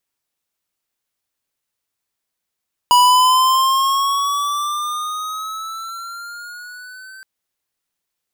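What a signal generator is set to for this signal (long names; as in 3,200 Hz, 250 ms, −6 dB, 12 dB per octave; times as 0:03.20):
pitch glide with a swell square, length 4.32 s, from 977 Hz, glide +8 semitones, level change −28 dB, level −10 dB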